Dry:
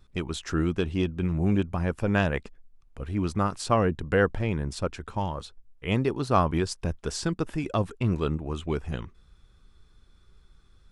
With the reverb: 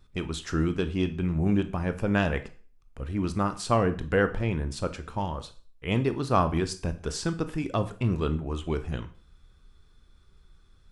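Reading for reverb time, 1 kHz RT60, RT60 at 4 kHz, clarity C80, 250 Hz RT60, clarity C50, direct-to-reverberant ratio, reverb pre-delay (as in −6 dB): 0.40 s, 0.40 s, 0.40 s, 19.5 dB, 0.45 s, 15.0 dB, 10.0 dB, 18 ms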